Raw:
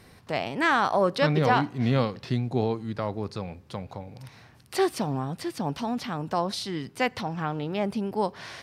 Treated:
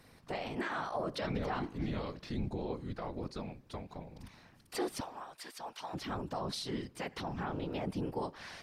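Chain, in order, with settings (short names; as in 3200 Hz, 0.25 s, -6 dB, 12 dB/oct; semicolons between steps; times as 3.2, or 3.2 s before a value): 5–5.94 HPF 850 Hz 12 dB/oct; limiter -20.5 dBFS, peak gain reduction 10.5 dB; whisperiser; gain -7 dB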